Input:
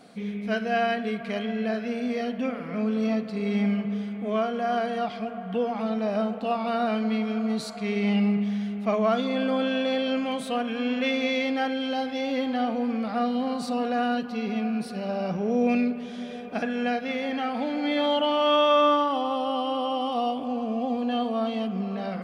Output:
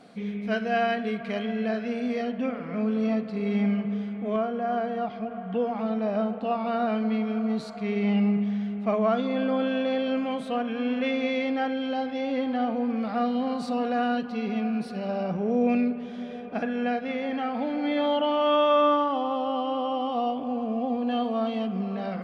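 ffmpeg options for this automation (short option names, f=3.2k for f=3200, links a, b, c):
-af "asetnsamples=n=441:p=0,asendcmd='2.22 lowpass f 2700;4.36 lowpass f 1100;5.31 lowpass f 2000;12.97 lowpass f 3800;15.23 lowpass f 2000;21.07 lowpass f 3800',lowpass=f=4.8k:p=1"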